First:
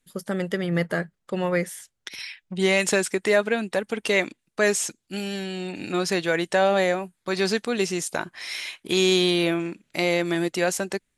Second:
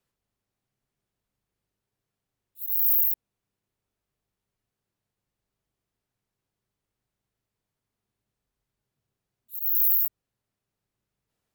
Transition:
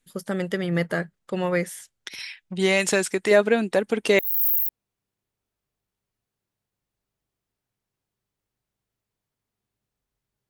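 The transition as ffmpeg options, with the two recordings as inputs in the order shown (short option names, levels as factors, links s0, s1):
-filter_complex "[0:a]asettb=1/sr,asplit=3[s0][s1][s2];[s0]atrim=end=3.314[s3];[s1]atrim=start=3.31:end=4.19,asetpts=PTS-STARTPTS,afade=t=in:d=0.004:c=qsin,afade=t=out:st=0.876:d=0.004:c=qsin,equalizer=f=340:t=o:w=2:g=5.5[s4];[s2]atrim=start=4.186[s5];[s3][s4]acrossfade=d=0.004:c1=hsin:c2=qsin[s6];[s6][s5]acrossfade=d=0.004:c1=qsin:c2=hsin,apad=whole_dur=10.49,atrim=end=10.49,atrim=end=4.192[s7];[1:a]atrim=start=2.638:end=8.94[s8];[s7][s8]acrossfade=d=0.004:c1=hsin:c2=hsin"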